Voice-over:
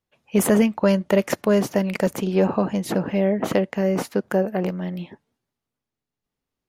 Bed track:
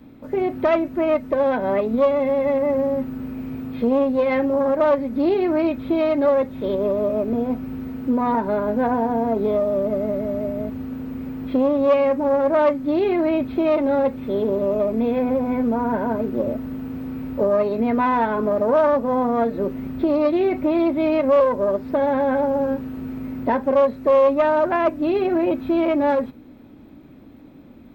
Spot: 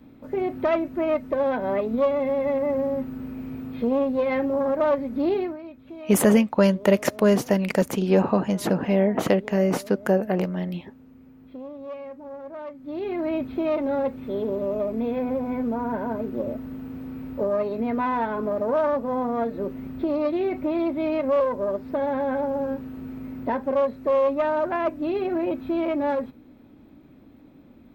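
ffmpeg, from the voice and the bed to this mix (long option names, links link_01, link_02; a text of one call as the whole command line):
ffmpeg -i stem1.wav -i stem2.wav -filter_complex "[0:a]adelay=5750,volume=0dB[link_01];[1:a]volume=10dB,afade=type=out:start_time=5.37:duration=0.2:silence=0.16788,afade=type=in:start_time=12.72:duration=0.64:silence=0.199526[link_02];[link_01][link_02]amix=inputs=2:normalize=0" out.wav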